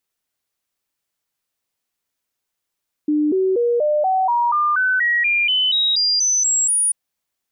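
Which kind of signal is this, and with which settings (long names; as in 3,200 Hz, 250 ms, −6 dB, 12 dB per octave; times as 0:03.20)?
stepped sweep 300 Hz up, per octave 3, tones 16, 0.24 s, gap 0.00 s −14.5 dBFS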